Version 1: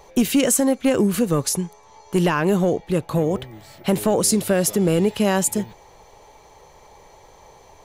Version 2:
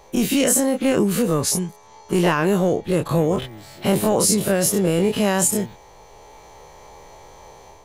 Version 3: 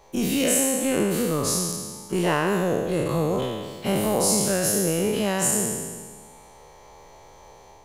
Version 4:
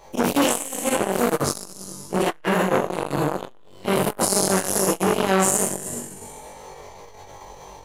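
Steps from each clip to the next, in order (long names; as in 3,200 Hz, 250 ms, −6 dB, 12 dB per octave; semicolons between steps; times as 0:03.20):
every bin's largest magnitude spread in time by 60 ms; automatic gain control gain up to 5 dB; level −4.5 dB
peak hold with a decay on every bin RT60 1.58 s; level −6.5 dB
flutter between parallel walls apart 3.6 metres, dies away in 0.51 s; flanger 0.83 Hz, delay 7.8 ms, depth 9.5 ms, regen −60%; saturating transformer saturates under 1,400 Hz; level +8.5 dB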